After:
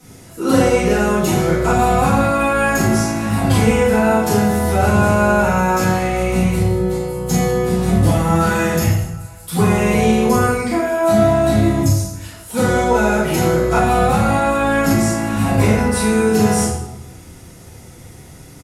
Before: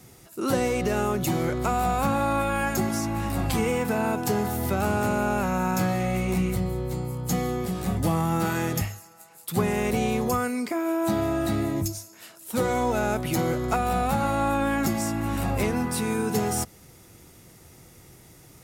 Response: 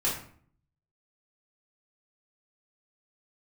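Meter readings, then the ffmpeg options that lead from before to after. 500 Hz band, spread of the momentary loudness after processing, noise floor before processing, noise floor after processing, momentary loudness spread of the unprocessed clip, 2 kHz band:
+11.0 dB, 5 LU, −52 dBFS, −39 dBFS, 5 LU, +11.0 dB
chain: -filter_complex "[0:a]asplit=2[link_01][link_02];[link_02]adelay=110.8,volume=-15dB,highshelf=frequency=4000:gain=-2.49[link_03];[link_01][link_03]amix=inputs=2:normalize=0[link_04];[1:a]atrim=start_sample=2205,asetrate=25137,aresample=44100[link_05];[link_04][link_05]afir=irnorm=-1:irlink=0,volume=-3dB"

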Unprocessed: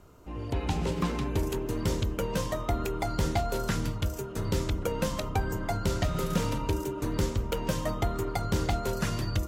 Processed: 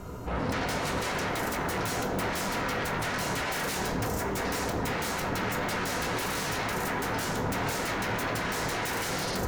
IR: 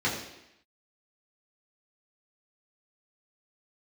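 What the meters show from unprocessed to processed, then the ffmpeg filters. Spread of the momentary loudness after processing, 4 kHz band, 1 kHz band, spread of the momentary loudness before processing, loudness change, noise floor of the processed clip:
1 LU, +4.5 dB, +4.0 dB, 3 LU, +0.5 dB, −32 dBFS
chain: -filter_complex "[0:a]alimiter=limit=-21dB:level=0:latency=1:release=216,aeval=exprs='0.0891*sin(PI/2*7.94*val(0)/0.0891)':channel_layout=same,asplit=2[link_01][link_02];[1:a]atrim=start_sample=2205,lowshelf=frequency=81:gain=7.5[link_03];[link_02][link_03]afir=irnorm=-1:irlink=0,volume=-13.5dB[link_04];[link_01][link_04]amix=inputs=2:normalize=0,volume=-9dB"

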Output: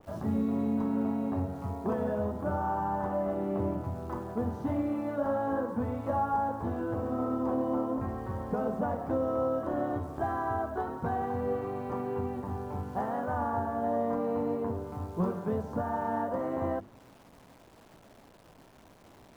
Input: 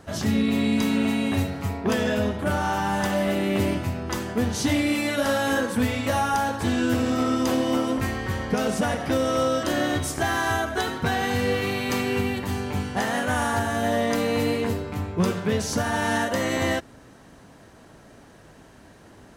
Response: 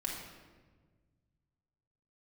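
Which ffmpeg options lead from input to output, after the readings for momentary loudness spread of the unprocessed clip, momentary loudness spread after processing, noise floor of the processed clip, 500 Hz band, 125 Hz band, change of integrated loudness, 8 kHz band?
4 LU, 6 LU, −57 dBFS, −6.0 dB, −8.0 dB, −7.5 dB, below −25 dB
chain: -filter_complex "[0:a]highshelf=frequency=1500:width_type=q:width=1.5:gain=-12.5,bandreject=frequency=50:width_type=h:width=6,bandreject=frequency=100:width_type=h:width=6,bandreject=frequency=150:width_type=h:width=6,bandreject=frequency=200:width_type=h:width=6,bandreject=frequency=250:width_type=h:width=6,bandreject=frequency=300:width_type=h:width=6,bandreject=frequency=350:width_type=h:width=6,bandreject=frequency=400:width_type=h:width=6,bandreject=frequency=450:width_type=h:width=6,acrossover=split=890|2700[link_01][link_02][link_03];[link_03]acompressor=threshold=-60dB:ratio=6[link_04];[link_01][link_02][link_04]amix=inputs=3:normalize=0,acrusher=bits=9:dc=4:mix=0:aa=0.000001,adynamicequalizer=threshold=0.00708:dfrequency=2100:dqfactor=0.7:tfrequency=2100:tqfactor=0.7:attack=5:release=100:ratio=0.375:range=4:mode=cutabove:tftype=highshelf,volume=-7dB"

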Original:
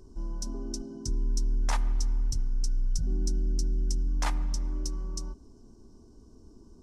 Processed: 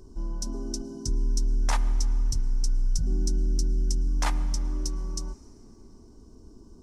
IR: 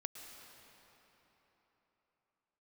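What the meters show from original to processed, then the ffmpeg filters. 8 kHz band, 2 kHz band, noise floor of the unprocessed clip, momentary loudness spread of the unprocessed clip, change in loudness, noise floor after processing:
+3.5 dB, +3.0 dB, −54 dBFS, 8 LU, +3.0 dB, −51 dBFS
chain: -filter_complex "[0:a]asplit=2[link_01][link_02];[1:a]atrim=start_sample=2205,highshelf=frequency=5200:gain=6.5[link_03];[link_02][link_03]afir=irnorm=-1:irlink=0,volume=-11.5dB[link_04];[link_01][link_04]amix=inputs=2:normalize=0,volume=1.5dB"

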